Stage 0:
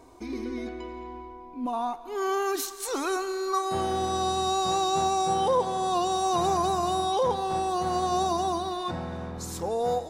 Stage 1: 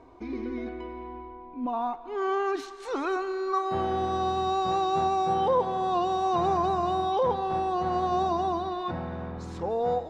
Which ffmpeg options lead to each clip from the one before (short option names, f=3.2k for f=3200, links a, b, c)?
-af "lowpass=2.7k"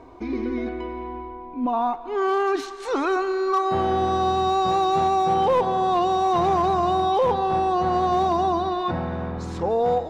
-filter_complex "[0:a]asplit=2[a][b];[b]alimiter=limit=-22dB:level=0:latency=1:release=21,volume=-1.5dB[c];[a][c]amix=inputs=2:normalize=0,asoftclip=type=hard:threshold=-15.5dB,volume=1.5dB"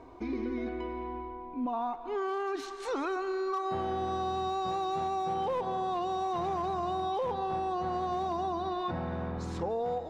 -af "acompressor=threshold=-25dB:ratio=4,volume=-5dB"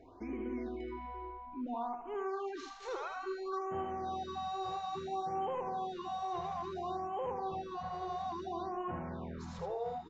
-af "aecho=1:1:78:0.501,aresample=16000,aresample=44100,afftfilt=real='re*(1-between(b*sr/1024,240*pow(4700/240,0.5+0.5*sin(2*PI*0.59*pts/sr))/1.41,240*pow(4700/240,0.5+0.5*sin(2*PI*0.59*pts/sr))*1.41))':imag='im*(1-between(b*sr/1024,240*pow(4700/240,0.5+0.5*sin(2*PI*0.59*pts/sr))/1.41,240*pow(4700/240,0.5+0.5*sin(2*PI*0.59*pts/sr))*1.41))':win_size=1024:overlap=0.75,volume=-6.5dB"